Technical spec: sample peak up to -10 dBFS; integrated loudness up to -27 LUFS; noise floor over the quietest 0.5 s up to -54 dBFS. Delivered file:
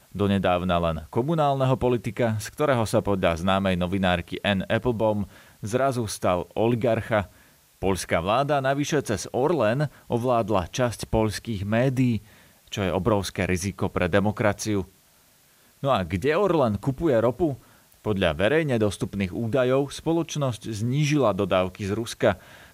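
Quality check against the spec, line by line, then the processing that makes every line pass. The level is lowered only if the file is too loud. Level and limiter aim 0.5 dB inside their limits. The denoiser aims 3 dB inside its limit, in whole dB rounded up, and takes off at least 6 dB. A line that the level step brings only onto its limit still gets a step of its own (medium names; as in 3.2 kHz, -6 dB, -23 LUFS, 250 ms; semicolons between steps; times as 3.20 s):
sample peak -7.0 dBFS: fail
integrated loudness -24.5 LUFS: fail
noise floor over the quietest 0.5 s -59 dBFS: pass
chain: trim -3 dB; peak limiter -10.5 dBFS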